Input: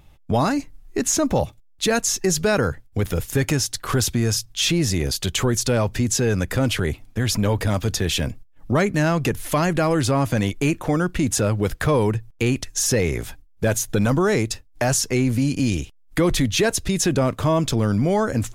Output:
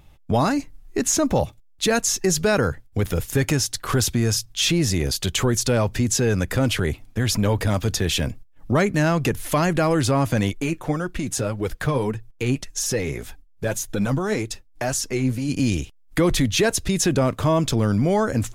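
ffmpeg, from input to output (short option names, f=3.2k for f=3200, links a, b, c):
-filter_complex "[0:a]asplit=3[a][b][c];[a]afade=t=out:st=10.53:d=0.02[d];[b]flanger=delay=2.1:depth=6:regen=38:speed=1.8:shape=triangular,afade=t=in:st=10.53:d=0.02,afade=t=out:st=15.48:d=0.02[e];[c]afade=t=in:st=15.48:d=0.02[f];[d][e][f]amix=inputs=3:normalize=0"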